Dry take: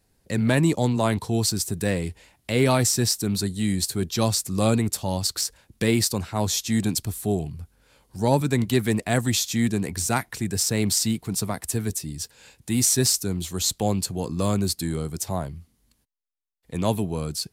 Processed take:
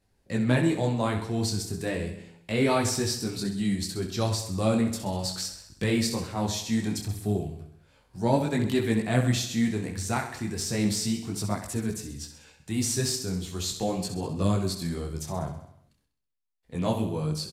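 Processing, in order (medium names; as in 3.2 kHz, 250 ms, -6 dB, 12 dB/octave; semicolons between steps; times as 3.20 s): treble shelf 7.7 kHz -11 dB; on a send: feedback delay 65 ms, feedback 56%, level -9 dB; on the sum: detune thickener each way 12 cents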